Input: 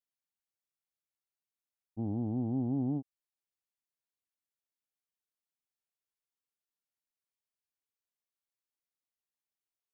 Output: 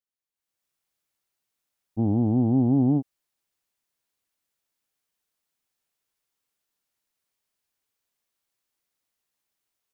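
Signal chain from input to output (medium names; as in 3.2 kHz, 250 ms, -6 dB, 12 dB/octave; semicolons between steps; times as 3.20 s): level rider gain up to 15 dB; trim -3.5 dB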